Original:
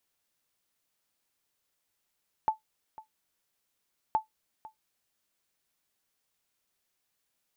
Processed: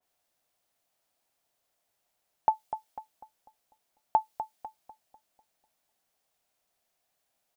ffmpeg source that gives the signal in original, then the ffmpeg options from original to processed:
-f lavfi -i "aevalsrc='0.141*(sin(2*PI*873*mod(t,1.67))*exp(-6.91*mod(t,1.67)/0.13)+0.106*sin(2*PI*873*max(mod(t,1.67)-0.5,0))*exp(-6.91*max(mod(t,1.67)-0.5,0)/0.13))':d=3.34:s=44100"
-filter_complex "[0:a]equalizer=f=690:w=2.5:g=11.5,asplit=2[a][b];[b]adelay=248,lowpass=f=1.1k:p=1,volume=-9dB,asplit=2[c][d];[d]adelay=248,lowpass=f=1.1k:p=1,volume=0.49,asplit=2[e][f];[f]adelay=248,lowpass=f=1.1k:p=1,volume=0.49,asplit=2[g][h];[h]adelay=248,lowpass=f=1.1k:p=1,volume=0.49,asplit=2[i][j];[j]adelay=248,lowpass=f=1.1k:p=1,volume=0.49,asplit=2[k][l];[l]adelay=248,lowpass=f=1.1k:p=1,volume=0.49[m];[a][c][e][g][i][k][m]amix=inputs=7:normalize=0,adynamicequalizer=threshold=0.00631:dfrequency=2200:dqfactor=0.7:tfrequency=2200:tqfactor=0.7:attack=5:release=100:ratio=0.375:range=3:mode=boostabove:tftype=highshelf"

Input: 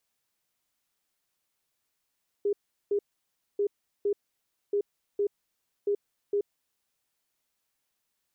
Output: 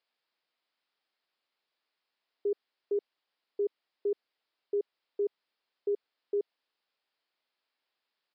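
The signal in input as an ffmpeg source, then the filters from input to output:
-f lavfi -i "aevalsrc='0.0708*sin(2*PI*407*t)*clip(min(mod(mod(t,1.14),0.46),0.08-mod(mod(t,1.14),0.46))/0.005,0,1)*lt(mod(t,1.14),0.92)':d=4.56:s=44100"
-af "highpass=340,aresample=11025,aresample=44100"

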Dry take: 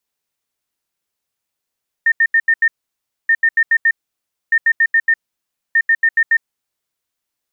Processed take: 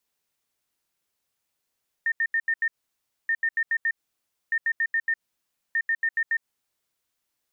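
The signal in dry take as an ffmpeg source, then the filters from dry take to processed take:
-f lavfi -i "aevalsrc='0.355*sin(2*PI*1820*t)*clip(min(mod(mod(t,1.23),0.14),0.06-mod(mod(t,1.23),0.14))/0.005,0,1)*lt(mod(t,1.23),0.7)':d=4.92:s=44100"
-af "alimiter=limit=-20.5dB:level=0:latency=1:release=97"

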